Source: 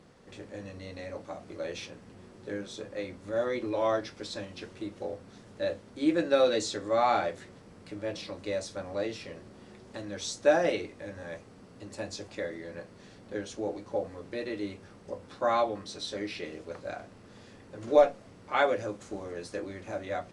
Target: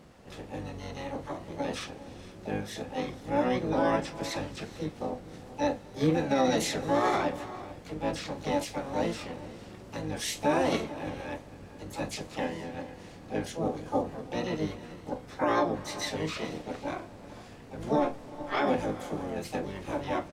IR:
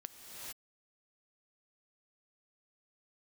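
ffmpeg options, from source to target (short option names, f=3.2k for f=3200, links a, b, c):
-filter_complex "[0:a]alimiter=limit=-20.5dB:level=0:latency=1:release=43,asplit=2[a][b];[1:a]atrim=start_sample=2205,lowshelf=f=100:g=11,adelay=38[c];[b][c]afir=irnorm=-1:irlink=0,volume=-9.5dB[d];[a][d]amix=inputs=2:normalize=0,asplit=3[e][f][g];[f]asetrate=22050,aresample=44100,atempo=2,volume=-2dB[h];[g]asetrate=66075,aresample=44100,atempo=0.66742,volume=-4dB[i];[e][h][i]amix=inputs=3:normalize=0"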